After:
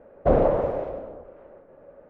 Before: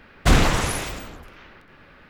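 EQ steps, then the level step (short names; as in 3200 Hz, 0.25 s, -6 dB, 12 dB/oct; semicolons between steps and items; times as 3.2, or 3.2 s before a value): synth low-pass 560 Hz, resonance Q 4.9; low shelf 350 Hz -11.5 dB; +1.5 dB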